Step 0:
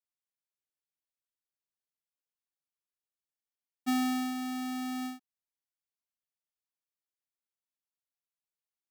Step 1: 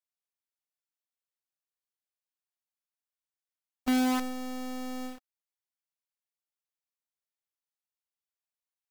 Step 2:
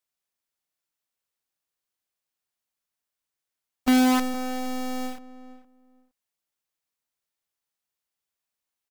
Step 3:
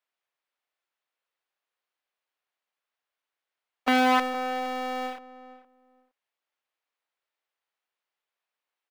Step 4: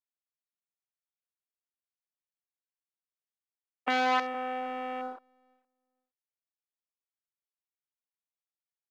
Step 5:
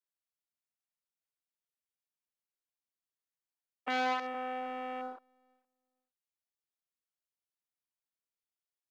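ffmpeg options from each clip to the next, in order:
-filter_complex "[0:a]lowshelf=f=310:g=10.5,acrossover=split=480|3100[a][b][c];[a]acrusher=bits=5:dc=4:mix=0:aa=0.000001[d];[d][b][c]amix=inputs=3:normalize=0,volume=-3.5dB"
-filter_complex "[0:a]asplit=2[a][b];[b]adelay=464,lowpass=f=1.3k:p=1,volume=-14.5dB,asplit=2[c][d];[d]adelay=464,lowpass=f=1.3k:p=1,volume=0.18[e];[a][c][e]amix=inputs=3:normalize=0,volume=7dB"
-filter_complex "[0:a]acrossover=split=370 3600:gain=0.0794 1 0.141[a][b][c];[a][b][c]amix=inputs=3:normalize=0,volume=5dB"
-filter_complex "[0:a]afwtdn=0.0178,acrossover=split=360|1300|5800[a][b][c][d];[a]acompressor=threshold=-39dB:ratio=6[e];[e][b][c][d]amix=inputs=4:normalize=0,volume=-4dB"
-af "alimiter=limit=-20.5dB:level=0:latency=1:release=69,volume=-3.5dB"

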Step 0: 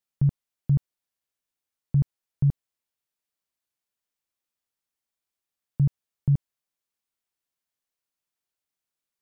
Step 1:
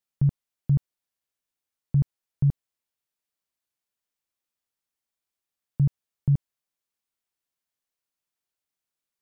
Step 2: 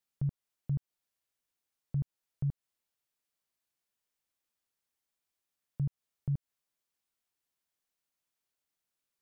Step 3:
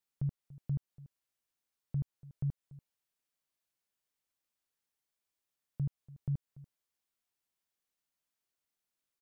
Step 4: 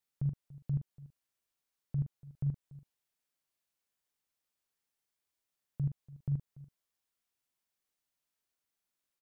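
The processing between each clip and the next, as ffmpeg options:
-af anull
-af "alimiter=level_in=2dB:limit=-24dB:level=0:latency=1:release=164,volume=-2dB"
-af "aecho=1:1:288:0.112,volume=-2dB"
-filter_complex "[0:a]asplit=2[a][b];[b]adelay=42,volume=-9dB[c];[a][c]amix=inputs=2:normalize=0"

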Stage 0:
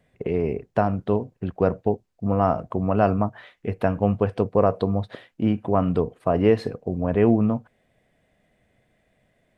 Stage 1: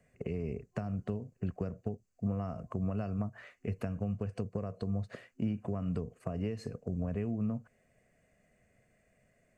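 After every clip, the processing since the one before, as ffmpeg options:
-filter_complex "[0:a]acompressor=threshold=-22dB:ratio=6,superequalizer=6b=0.631:9b=0.501:13b=0.282:15b=2.24,acrossover=split=240|3000[a][b][c];[b]acompressor=threshold=-39dB:ratio=3[d];[a][d][c]amix=inputs=3:normalize=0,volume=-4dB"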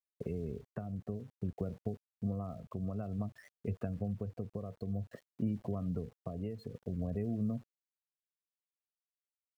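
-af "afftdn=nr=18:nf=-44,aeval=exprs='val(0)*gte(abs(val(0)),0.0015)':c=same,tremolo=f=0.54:d=0.33,volume=-1dB"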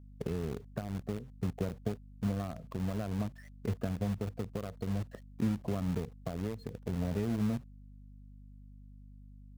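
-filter_complex "[0:a]asplit=2[a][b];[b]acrusher=bits=5:mix=0:aa=0.000001,volume=-7.5dB[c];[a][c]amix=inputs=2:normalize=0,aeval=exprs='val(0)+0.00282*(sin(2*PI*50*n/s)+sin(2*PI*2*50*n/s)/2+sin(2*PI*3*50*n/s)/3+sin(2*PI*4*50*n/s)/4+sin(2*PI*5*50*n/s)/5)':c=same"

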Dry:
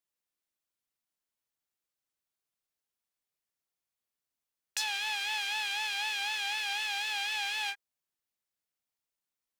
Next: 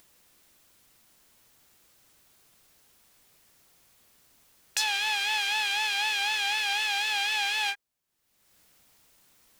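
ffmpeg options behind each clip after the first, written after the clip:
-af "lowshelf=f=320:g=5.5,acompressor=mode=upward:threshold=-49dB:ratio=2.5,volume=5.5dB"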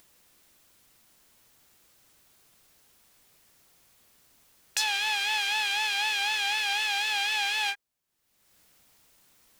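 -af anull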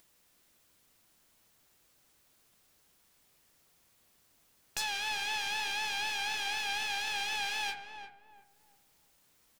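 -filter_complex "[0:a]aeval=exprs='clip(val(0),-1,0.0237)':c=same,flanger=delay=6.1:depth=6.7:regen=-81:speed=0.68:shape=sinusoidal,asplit=2[a][b];[b]adelay=349,lowpass=f=1k:p=1,volume=-5.5dB,asplit=2[c][d];[d]adelay=349,lowpass=f=1k:p=1,volume=0.36,asplit=2[e][f];[f]adelay=349,lowpass=f=1k:p=1,volume=0.36,asplit=2[g][h];[h]adelay=349,lowpass=f=1k:p=1,volume=0.36[i];[a][c][e][g][i]amix=inputs=5:normalize=0,volume=-1.5dB"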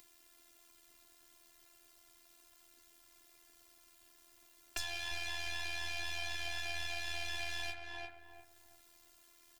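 -filter_complex "[0:a]tremolo=f=83:d=0.919,afftfilt=real='hypot(re,im)*cos(PI*b)':imag='0':win_size=512:overlap=0.75,acrossover=split=150[a][b];[b]acompressor=threshold=-51dB:ratio=3[c];[a][c]amix=inputs=2:normalize=0,volume=11dB"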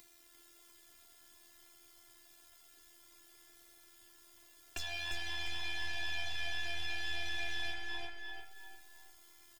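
-filter_complex "[0:a]aeval=exprs='(tanh(22.4*val(0)+0.65)-tanh(0.65))/22.4':c=same,asplit=2[a][b];[b]aecho=0:1:346|692|1038|1384:0.501|0.175|0.0614|0.0215[c];[a][c]amix=inputs=2:normalize=0,flanger=delay=9.2:depth=1.5:regen=-50:speed=0.27:shape=sinusoidal,volume=10dB"

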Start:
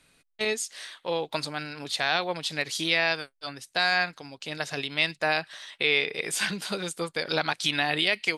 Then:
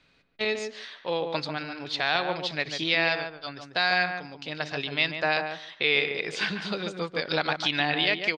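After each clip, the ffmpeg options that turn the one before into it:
-filter_complex "[0:a]lowpass=f=5.1k:w=0.5412,lowpass=f=5.1k:w=1.3066,asplit=2[a][b];[b]adelay=144,lowpass=f=1.3k:p=1,volume=-5dB,asplit=2[c][d];[d]adelay=144,lowpass=f=1.3k:p=1,volume=0.16,asplit=2[e][f];[f]adelay=144,lowpass=f=1.3k:p=1,volume=0.16[g];[c][e][g]amix=inputs=3:normalize=0[h];[a][h]amix=inputs=2:normalize=0"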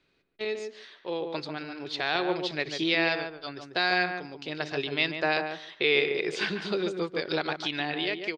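-af "equalizer=f=370:w=3.1:g=11.5,dynaudnorm=f=380:g=9:m=11.5dB,volume=-8dB"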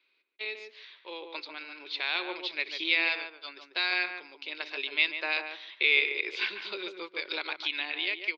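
-af "aexciter=amount=5.9:drive=3:freq=2.5k,highpass=f=340:w=0.5412,highpass=f=340:w=1.3066,equalizer=f=450:t=q:w=4:g=-4,equalizer=f=710:t=q:w=4:g=-6,equalizer=f=1k:t=q:w=4:g=6,equalizer=f=1.5k:t=q:w=4:g=3,equalizer=f=2.2k:t=q:w=4:g=7,equalizer=f=3.1k:t=q:w=4:g=-5,lowpass=f=3.6k:w=0.5412,lowpass=f=3.6k:w=1.3066,volume=-8dB"

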